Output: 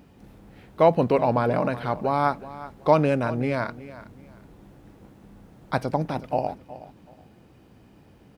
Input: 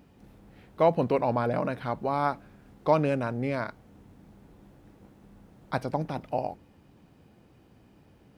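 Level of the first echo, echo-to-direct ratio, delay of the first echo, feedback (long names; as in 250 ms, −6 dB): −16.0 dB, −16.0 dB, 372 ms, 25%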